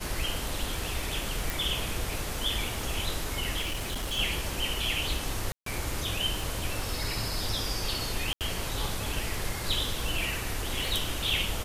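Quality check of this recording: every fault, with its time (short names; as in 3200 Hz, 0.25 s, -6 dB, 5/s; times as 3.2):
crackle 26/s -34 dBFS
1.5 pop
3.61–4.19 clipped -28.5 dBFS
5.52–5.66 gap 0.143 s
8.33–8.41 gap 78 ms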